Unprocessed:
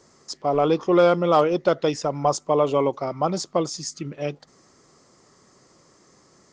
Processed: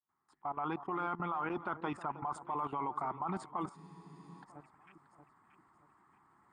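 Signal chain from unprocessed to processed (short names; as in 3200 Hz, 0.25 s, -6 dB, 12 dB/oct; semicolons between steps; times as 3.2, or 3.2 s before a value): opening faded in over 1.38 s; HPF 45 Hz; bell 75 Hz +2.5 dB 2.9 oct; harmonic-percussive split harmonic -6 dB; EQ curve 150 Hz 0 dB, 350 Hz -1 dB, 540 Hz -15 dB, 850 Hz +13 dB, 1500 Hz +9 dB, 3700 Hz -10 dB, 6100 Hz -29 dB, 8700 Hz 0 dB; limiter -11.5 dBFS, peak gain reduction 11 dB; level quantiser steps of 16 dB; echo with dull and thin repeats by turns 0.315 s, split 1200 Hz, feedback 60%, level -13 dB; spectral freeze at 3.79, 0.64 s; gain -4 dB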